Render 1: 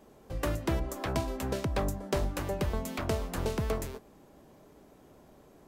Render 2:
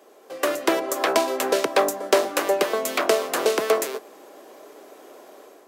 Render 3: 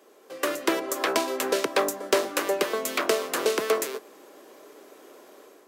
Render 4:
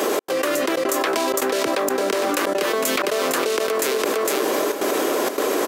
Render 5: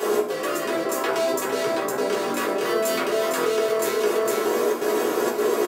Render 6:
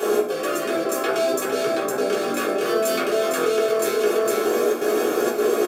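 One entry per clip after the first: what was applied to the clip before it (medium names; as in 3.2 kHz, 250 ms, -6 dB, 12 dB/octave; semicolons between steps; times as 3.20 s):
high-pass 360 Hz 24 dB/octave; band-stop 890 Hz, Q 12; level rider gain up to 7 dB; trim +7.5 dB
peaking EQ 710 Hz -6 dB 0.65 oct; hard clipper -8 dBFS, distortion -31 dB; trim -2 dB
trance gate "xx.xxxxx.xxx" 159 bpm -60 dB; delay 457 ms -14.5 dB; level flattener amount 100%; trim -4 dB
feedback comb 60 Hz, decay 0.21 s, harmonics all, mix 70%; echo from a far wall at 20 m, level -16 dB; reverberation RT60 0.50 s, pre-delay 3 ms, DRR -7.5 dB; trim -7 dB
comb of notches 970 Hz; trim +2 dB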